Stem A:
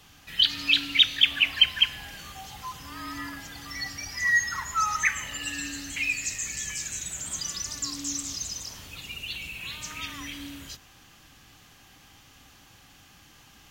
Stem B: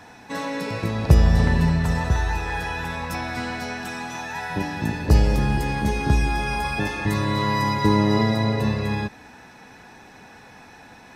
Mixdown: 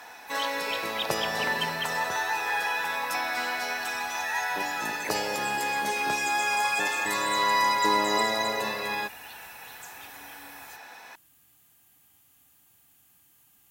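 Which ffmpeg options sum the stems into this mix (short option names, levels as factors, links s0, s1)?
-filter_complex "[0:a]aexciter=amount=6.2:drive=6.7:freq=7800,volume=0.178[s0];[1:a]highpass=650,volume=1.26[s1];[s0][s1]amix=inputs=2:normalize=0,highpass=71"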